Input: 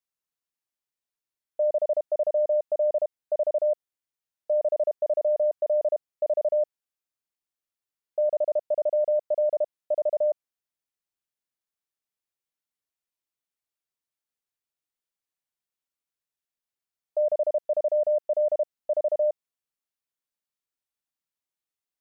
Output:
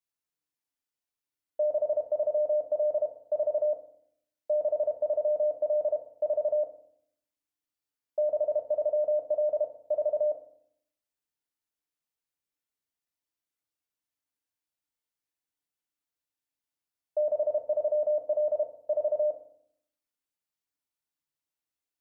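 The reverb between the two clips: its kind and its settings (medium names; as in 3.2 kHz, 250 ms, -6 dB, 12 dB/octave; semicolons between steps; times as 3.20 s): FDN reverb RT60 0.65 s, low-frequency decay 1.55×, high-frequency decay 0.85×, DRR 1.5 dB; trim -3.5 dB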